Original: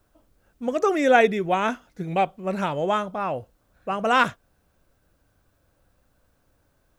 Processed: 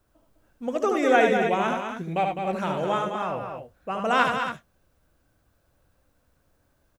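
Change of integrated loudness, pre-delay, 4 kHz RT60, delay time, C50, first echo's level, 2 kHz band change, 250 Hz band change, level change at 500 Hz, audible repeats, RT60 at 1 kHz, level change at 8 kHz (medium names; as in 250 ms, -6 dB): -1.5 dB, no reverb, no reverb, 74 ms, no reverb, -5.0 dB, -1.5 dB, -1.0 dB, -1.5 dB, 3, no reverb, -1.0 dB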